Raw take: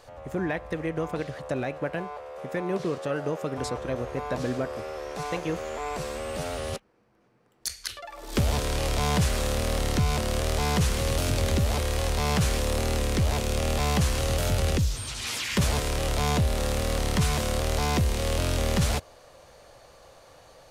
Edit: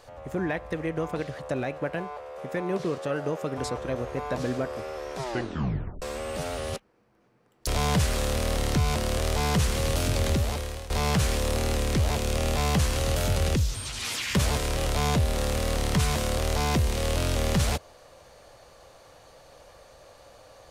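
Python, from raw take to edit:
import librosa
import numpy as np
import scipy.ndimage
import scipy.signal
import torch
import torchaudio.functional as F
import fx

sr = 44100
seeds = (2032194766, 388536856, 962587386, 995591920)

y = fx.edit(x, sr, fx.tape_stop(start_s=5.13, length_s=0.89),
    fx.cut(start_s=7.67, length_s=1.22),
    fx.fade_out_to(start_s=11.53, length_s=0.59, floor_db=-16.0), tone=tone)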